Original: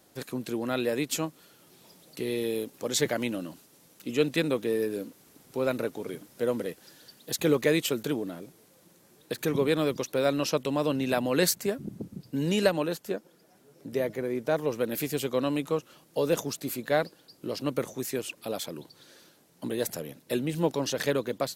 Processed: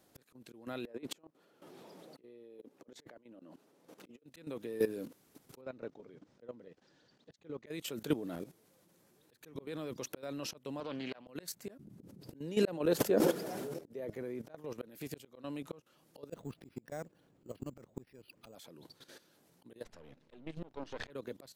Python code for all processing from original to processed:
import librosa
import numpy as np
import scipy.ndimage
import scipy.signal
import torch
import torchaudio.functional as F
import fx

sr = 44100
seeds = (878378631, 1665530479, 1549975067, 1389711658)

y = fx.chain(x, sr, fx.highpass(hz=400.0, slope=12),
    fx.tilt_eq(slope=-4.0),
    fx.over_compress(threshold_db=-35.0, ratio=-0.5), at=(0.85, 4.24))
y = fx.chain(y, sr, fx.lowpass(hz=6500.0, slope=24),
    fx.high_shelf(hz=2100.0, db=-6.0),
    fx.upward_expand(threshold_db=-36.0, expansion=1.5), at=(5.61, 7.66))
y = fx.chain(y, sr, fx.bandpass_edges(low_hz=110.0, high_hz=3800.0),
    fx.low_shelf(hz=410.0, db=-12.0),
    fx.doppler_dist(depth_ms=0.16), at=(10.8, 11.27))
y = fx.chain(y, sr, fx.highpass(hz=58.0, slope=12),
    fx.peak_eq(hz=450.0, db=6.0, octaves=1.4),
    fx.sustainer(db_per_s=29.0), at=(12.0, 14.1))
y = fx.chain(y, sr, fx.low_shelf(hz=190.0, db=10.5),
    fx.transient(attack_db=9, sustain_db=-3),
    fx.resample_bad(factor=6, down='filtered', up='hold'), at=(16.29, 18.55))
y = fx.chain(y, sr, fx.halfwave_gain(db=-12.0),
    fx.lowpass(hz=4100.0, slope=12), at=(19.84, 21.1))
y = fx.high_shelf(y, sr, hz=2500.0, db=-3.0)
y = fx.auto_swell(y, sr, attack_ms=498.0)
y = fx.level_steps(y, sr, step_db=14)
y = y * 10.0 ** (1.5 / 20.0)